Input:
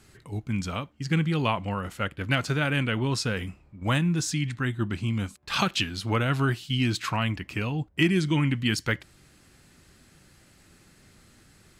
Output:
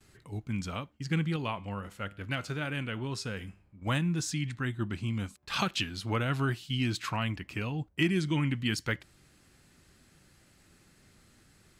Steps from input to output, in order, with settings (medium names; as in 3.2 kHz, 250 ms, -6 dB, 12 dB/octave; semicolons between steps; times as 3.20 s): gate with hold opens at -50 dBFS; 1.36–3.87 s: feedback comb 100 Hz, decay 0.52 s, harmonics all, mix 40%; trim -5 dB